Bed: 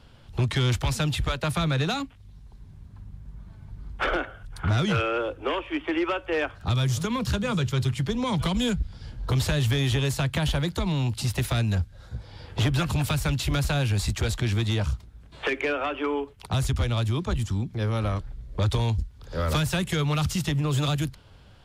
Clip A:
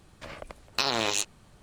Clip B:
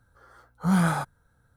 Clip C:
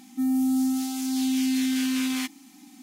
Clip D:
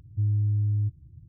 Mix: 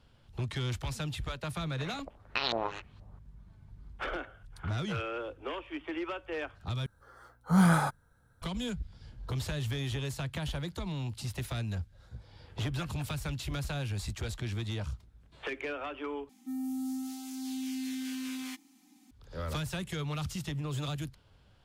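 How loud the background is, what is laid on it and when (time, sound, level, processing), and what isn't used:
bed -10.5 dB
1.57 s: add A -6.5 dB + LFO low-pass saw up 2.1 Hz 590–4500 Hz
6.86 s: replace with B -1 dB
16.29 s: replace with C -12 dB
not used: D

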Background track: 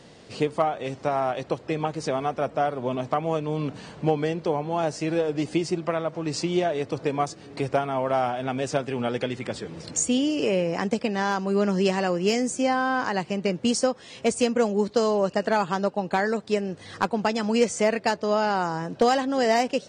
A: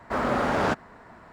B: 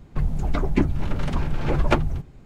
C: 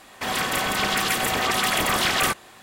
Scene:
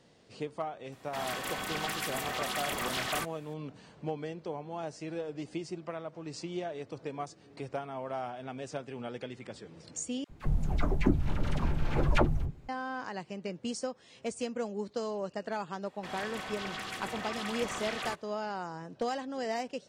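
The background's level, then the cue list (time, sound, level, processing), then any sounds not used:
background track -13 dB
0.92 s: add C -12.5 dB
10.24 s: replace with B -5.5 dB + phase dispersion lows, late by 56 ms, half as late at 830 Hz
15.82 s: add C -15.5 dB + distance through air 51 m
not used: A

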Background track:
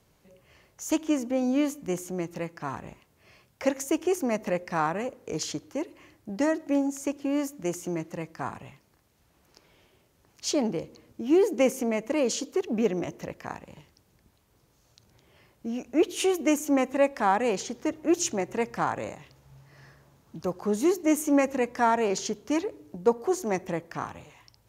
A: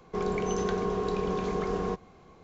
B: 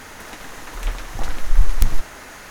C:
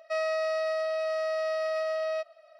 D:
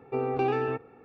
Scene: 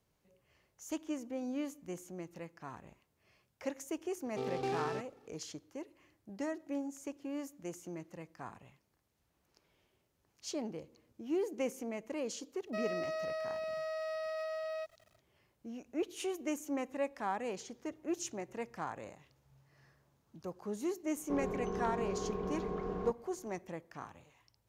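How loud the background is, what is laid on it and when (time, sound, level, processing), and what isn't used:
background track -13 dB
4.24 s: add D -9.5 dB + delay time shaken by noise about 3.1 kHz, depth 0.035 ms
12.63 s: add C -9 dB, fades 0.10 s + small samples zeroed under -51.5 dBFS
21.16 s: add A -8 dB + low-pass 1.6 kHz 6 dB/octave
not used: B

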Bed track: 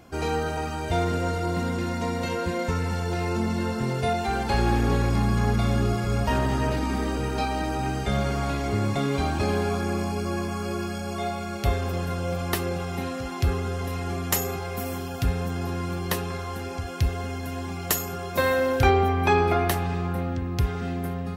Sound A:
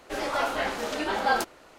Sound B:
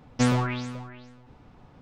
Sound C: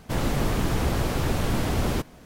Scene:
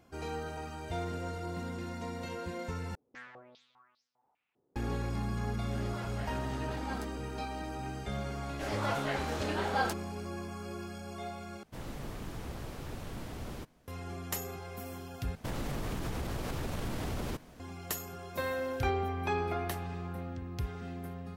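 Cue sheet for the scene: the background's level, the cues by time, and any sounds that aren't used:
bed track -12 dB
2.95 s: replace with B -11.5 dB + step-sequenced band-pass 5 Hz 390–5300 Hz
5.61 s: add A -18 dB
8.49 s: add A -7 dB
11.63 s: replace with C -17 dB
15.35 s: replace with C -5.5 dB + compression, threshold -26 dBFS

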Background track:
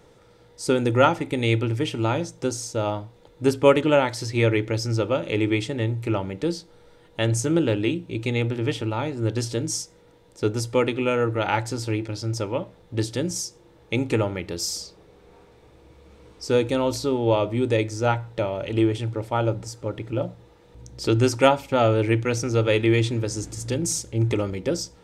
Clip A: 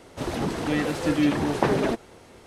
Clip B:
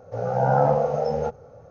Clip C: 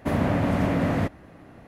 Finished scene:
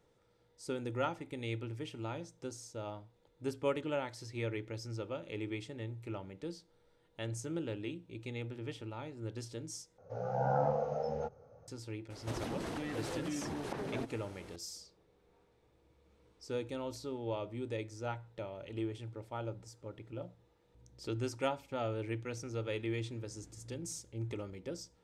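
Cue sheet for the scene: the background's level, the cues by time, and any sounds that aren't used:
background track -17.5 dB
9.98 s: replace with B -12 dB
12.10 s: add A -4.5 dB + compression 10:1, threshold -31 dBFS
not used: C

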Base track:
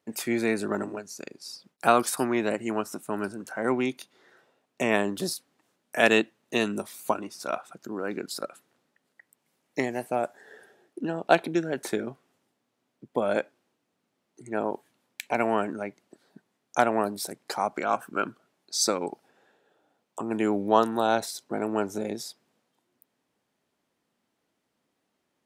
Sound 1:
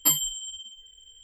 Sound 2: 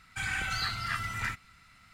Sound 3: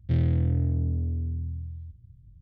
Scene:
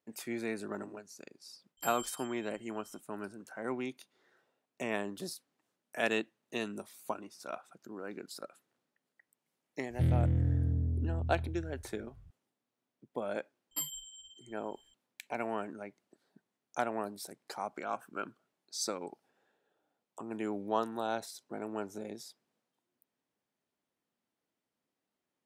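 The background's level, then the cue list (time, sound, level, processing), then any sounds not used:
base track -11 dB
1.77 s: add 1 -16.5 dB + peak limiter -16 dBFS
9.90 s: add 3 -4.5 dB
13.71 s: add 1 -15 dB
not used: 2

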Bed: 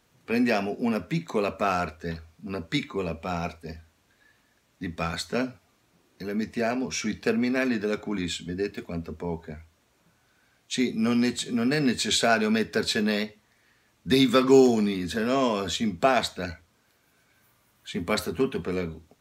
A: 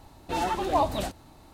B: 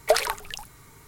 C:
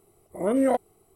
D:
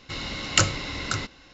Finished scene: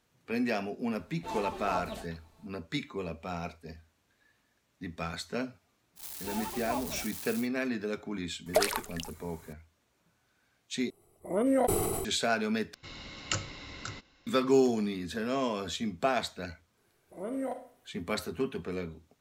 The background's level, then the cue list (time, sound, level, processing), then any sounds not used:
bed -7 dB
0.94 s: add A -3 dB + feedback comb 220 Hz, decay 0.15 s, mix 80%
5.95 s: add A -12.5 dB, fades 0.10 s + zero-crossing glitches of -18.5 dBFS
8.46 s: add B -6 dB + treble shelf 7.2 kHz +4.5 dB
10.90 s: replace with C -4.5 dB + decay stretcher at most 25 dB/s
12.74 s: replace with D -12.5 dB
16.77 s: add C -13.5 dB + Schroeder reverb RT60 0.52 s, DRR 8 dB

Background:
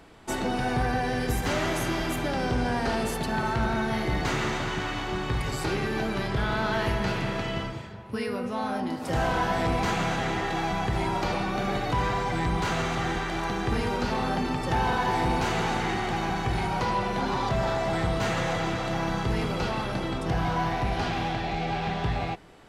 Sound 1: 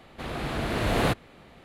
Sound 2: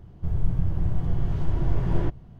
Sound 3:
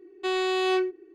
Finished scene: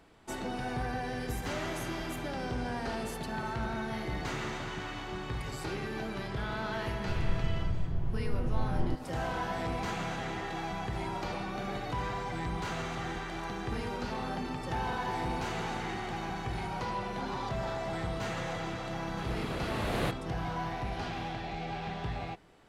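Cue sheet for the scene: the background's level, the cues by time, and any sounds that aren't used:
background -8.5 dB
6.85 s: add 2 -8 dB
18.98 s: add 1 -8 dB
not used: 3

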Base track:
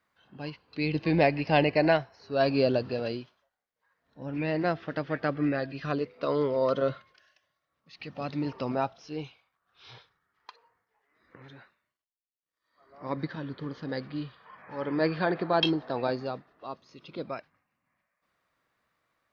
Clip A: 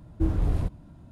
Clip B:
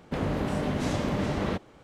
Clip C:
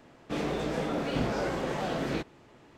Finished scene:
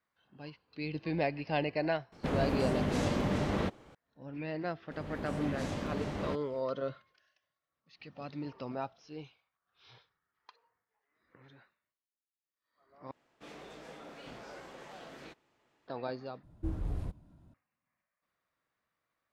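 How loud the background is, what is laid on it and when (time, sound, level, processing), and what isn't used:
base track -9 dB
2.12 s: add B -3 dB
4.78 s: add B -8.5 dB + fade-in on the opening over 0.60 s
13.11 s: replace with C -13.5 dB + bass shelf 450 Hz -10.5 dB
16.43 s: replace with A -11 dB

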